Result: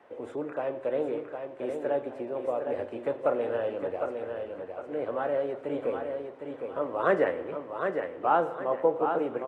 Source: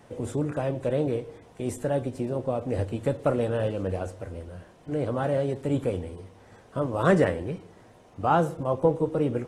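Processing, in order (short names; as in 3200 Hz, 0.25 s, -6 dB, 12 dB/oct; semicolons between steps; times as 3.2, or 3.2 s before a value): three-band isolator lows -24 dB, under 310 Hz, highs -21 dB, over 2900 Hz; feedback echo 0.759 s, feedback 35%, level -6 dB; reverb RT60 1.5 s, pre-delay 35 ms, DRR 15 dB; gain -1 dB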